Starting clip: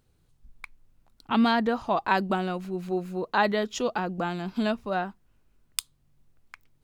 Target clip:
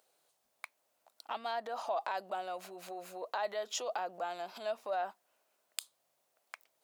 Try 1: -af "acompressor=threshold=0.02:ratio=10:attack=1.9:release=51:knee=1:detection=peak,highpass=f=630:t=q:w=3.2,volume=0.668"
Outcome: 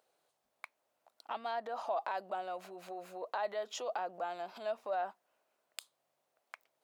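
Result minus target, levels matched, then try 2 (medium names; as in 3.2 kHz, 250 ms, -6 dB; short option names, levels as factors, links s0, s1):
8 kHz band -6.5 dB
-af "acompressor=threshold=0.02:ratio=10:attack=1.9:release=51:knee=1:detection=peak,highpass=f=630:t=q:w=3.2,highshelf=f=3600:g=9,volume=0.668"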